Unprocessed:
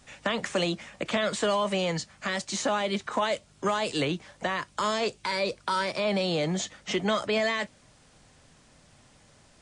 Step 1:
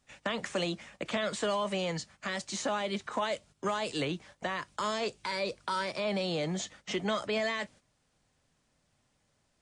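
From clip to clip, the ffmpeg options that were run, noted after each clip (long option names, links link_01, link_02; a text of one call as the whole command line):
ffmpeg -i in.wav -af "agate=range=-11dB:threshold=-48dB:ratio=16:detection=peak,volume=-5dB" out.wav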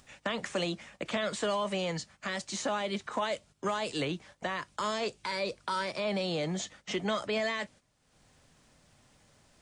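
ffmpeg -i in.wav -af "acompressor=mode=upward:threshold=-52dB:ratio=2.5" out.wav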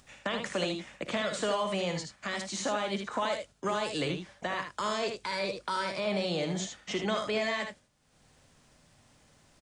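ffmpeg -i in.wav -af "aecho=1:1:56|77:0.251|0.473" out.wav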